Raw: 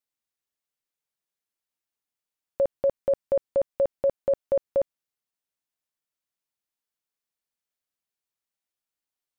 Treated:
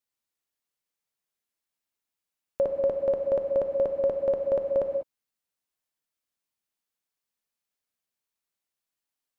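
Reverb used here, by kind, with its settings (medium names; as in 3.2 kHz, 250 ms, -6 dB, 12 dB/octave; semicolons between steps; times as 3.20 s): gated-style reverb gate 220 ms flat, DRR 4 dB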